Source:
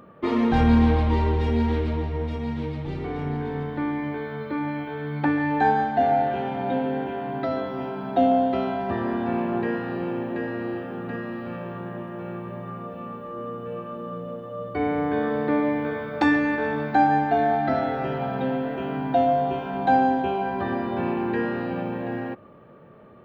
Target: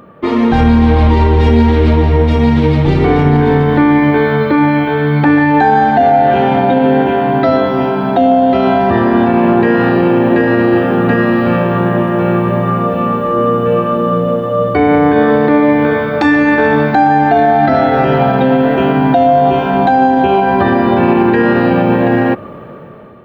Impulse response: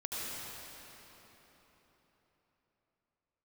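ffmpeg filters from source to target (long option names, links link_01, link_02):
-af "dynaudnorm=framelen=390:gausssize=5:maxgain=12dB,alimiter=level_in=10.5dB:limit=-1dB:release=50:level=0:latency=1,volume=-1dB"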